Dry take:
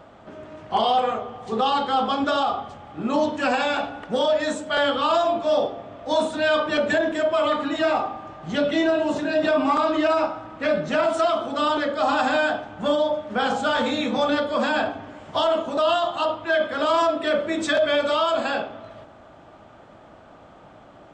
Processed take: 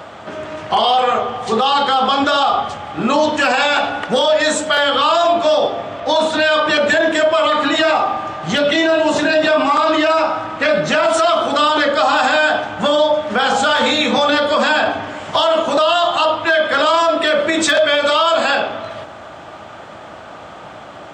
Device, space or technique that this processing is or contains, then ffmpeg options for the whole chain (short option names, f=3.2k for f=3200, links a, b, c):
mastering chain: -filter_complex "[0:a]asettb=1/sr,asplit=3[a][b][c];[a]atrim=end=6.004[d];[b]atrim=start=6:end=6.4,asetpts=PTS-STARTPTS,afade=t=in:d=0.004:c=qsin,afade=t=out:st=0.396:d=0.004:c=qsin,lowpass=5.7k[e];[c]atrim=start=6.396[f];[d][e]acrossfade=d=0.004:c1=hsin:c2=qsin[g];[g][f]acrossfade=d=0.004:c1=qsin:c2=hsin,highpass=f=60:w=0.5412,highpass=f=60:w=1.3066,equalizer=f=260:t=o:w=0.21:g=-3.5,acompressor=threshold=-24dB:ratio=2,tiltshelf=f=770:g=-4.5,asoftclip=type=hard:threshold=-14.5dB,alimiter=level_in=18.5dB:limit=-1dB:release=50:level=0:latency=1,volume=-5dB"